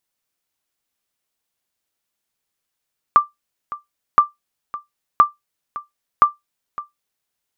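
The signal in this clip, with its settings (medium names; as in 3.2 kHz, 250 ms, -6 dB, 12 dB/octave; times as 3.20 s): sonar ping 1.18 kHz, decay 0.16 s, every 1.02 s, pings 4, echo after 0.56 s, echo -17.5 dB -2 dBFS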